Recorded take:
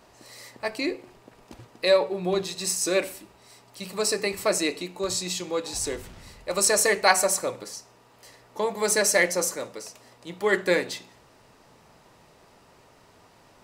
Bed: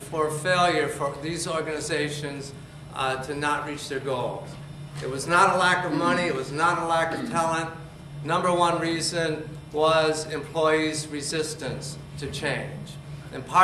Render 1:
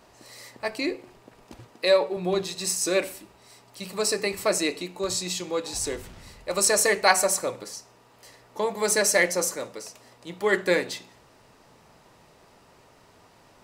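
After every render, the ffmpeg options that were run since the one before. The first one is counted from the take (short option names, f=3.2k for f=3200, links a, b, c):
-filter_complex "[0:a]asettb=1/sr,asplit=3[a][b][c];[a]atrim=end=1.734[d];[b]atrim=start=1.73:end=2.17,asetpts=PTS-STARTPTS,afade=t=in:d=0.004:c=qsin,afade=t=out:st=0.436:d=0.004:c=qsin,highpass=170[e];[c]atrim=start=2.166[f];[d][e]acrossfade=d=0.004:c1=hsin:c2=qsin[g];[g][f]acrossfade=d=0.004:c1=qsin:c2=hsin"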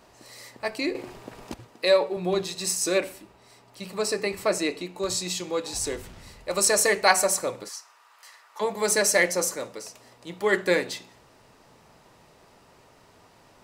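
-filter_complex "[0:a]asettb=1/sr,asplit=3[a][b][c];[a]atrim=end=2.984[d];[b]atrim=start=2.98:end=4.96,asetpts=PTS-STARTPTS,afade=t=in:d=0.004:c=qsin,afade=t=out:st=1.976:d=0.004:c=qsin,highshelf=f=4k:g=-6[e];[c]atrim=start=4.956[f];[d][e]acrossfade=d=0.004:c1=hsin:c2=qsin[g];[g][f]acrossfade=d=0.004:c1=qsin:c2=hsin,asplit=3[h][i][j];[h]afade=t=out:st=7.68:d=0.02[k];[i]highpass=f=1.2k:t=q:w=1.9,afade=t=in:st=7.68:d=0.02,afade=t=out:st=8.6:d=0.02[l];[j]afade=t=in:st=8.6:d=0.02[m];[k][l][m]amix=inputs=3:normalize=0,asplit=3[n][o][p];[n]atrim=end=0.952[q];[o]atrim=start=0.948:end=1.542,asetpts=PTS-STARTPTS,volume=9dB[r];[p]atrim=start=1.538[s];[q][r]acrossfade=d=0.004:c1=hsin:c2=hsin[t];[t][s]acrossfade=d=0.004:c1=hsin:c2=hsin"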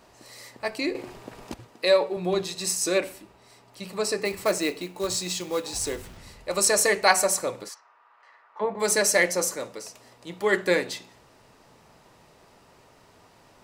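-filter_complex "[0:a]asettb=1/sr,asplit=3[a][b][c];[a]atrim=end=4.254[d];[b]atrim=start=4.25:end=6.17,asetpts=PTS-STARTPTS,afade=t=in:d=0.004:c=qsin,afade=t=out:st=1.916:d=0.004:c=qsin,acrusher=bits=4:mode=log:mix=0:aa=0.000001[e];[c]atrim=start=6.166[f];[d][e]acrossfade=d=0.004:c1=hsin:c2=qsin[g];[g][f]acrossfade=d=0.004:c1=qsin:c2=hsin,asplit=3[h][i][j];[h]afade=t=out:st=7.73:d=0.02[k];[i]lowpass=1.7k,afade=t=in:st=7.73:d=0.02,afade=t=out:st=8.79:d=0.02[l];[j]afade=t=in:st=8.79:d=0.02[m];[k][l][m]amix=inputs=3:normalize=0"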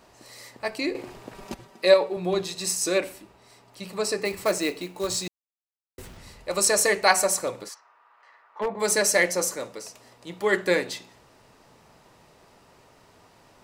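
-filter_complex "[0:a]asettb=1/sr,asplit=3[a][b][c];[a]atrim=end=1.344[d];[b]atrim=start=1.34:end=1.94,asetpts=PTS-STARTPTS,afade=t=in:d=0.004:c=qsin,afade=t=out:st=0.596:d=0.004:c=qsin,aecho=1:1:5.2:0.67,atrim=end_sample=26460[e];[c]atrim=start=1.936[f];[d][e]acrossfade=d=0.004:c1=hsin:c2=qsin[g];[g][f]acrossfade=d=0.004:c1=qsin:c2=hsin,asettb=1/sr,asplit=3[h][i][j];[h]atrim=end=7.464[k];[i]atrim=start=7.46:end=8.82,asetpts=PTS-STARTPTS,afade=t=in:d=0.004:c=qsin,afade=t=out:st=1.356:d=0.004:c=qsin,aeval=exprs='0.106*(abs(mod(val(0)/0.106+3,4)-2)-1)':c=same[l];[j]atrim=start=8.816[m];[k][l]acrossfade=d=0.004:c1=hsin:c2=qsin[n];[n][m]acrossfade=d=0.004:c1=qsin:c2=hsin,asplit=3[o][p][q];[o]atrim=end=5.28,asetpts=PTS-STARTPTS,afade=t=out:st=5.276:d=0.004:c=hsin[r];[p]atrim=start=5.28:end=5.98,asetpts=PTS-STARTPTS,volume=0[s];[q]atrim=start=5.98,asetpts=PTS-STARTPTS,afade=t=in:d=0.004:c=hsin[t];[r][s][t]concat=n=3:v=0:a=1"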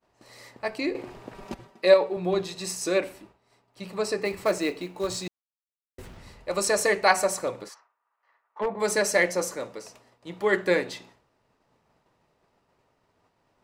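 -af "agate=range=-33dB:threshold=-46dB:ratio=3:detection=peak,highshelf=f=4.4k:g=-9"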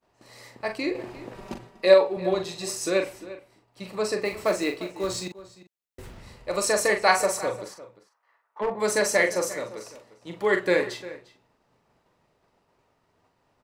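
-filter_complex "[0:a]asplit=2[a][b];[b]adelay=42,volume=-7dB[c];[a][c]amix=inputs=2:normalize=0,asplit=2[d][e];[e]adelay=349.9,volume=-16dB,highshelf=f=4k:g=-7.87[f];[d][f]amix=inputs=2:normalize=0"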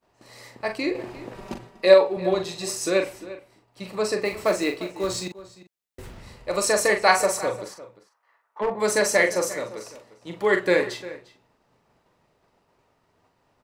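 -af "volume=2dB"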